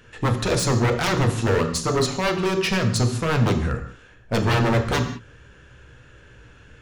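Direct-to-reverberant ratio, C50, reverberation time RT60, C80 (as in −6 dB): 5.0 dB, 9.5 dB, non-exponential decay, 12.0 dB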